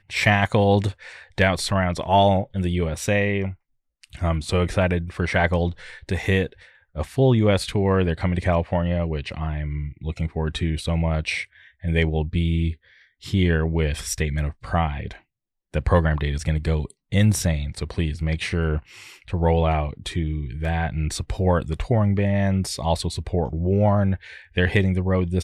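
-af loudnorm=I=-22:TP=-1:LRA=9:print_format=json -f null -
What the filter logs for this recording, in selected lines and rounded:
"input_i" : "-23.0",
"input_tp" : "-7.5",
"input_lra" : "2.8",
"input_thresh" : "-33.3",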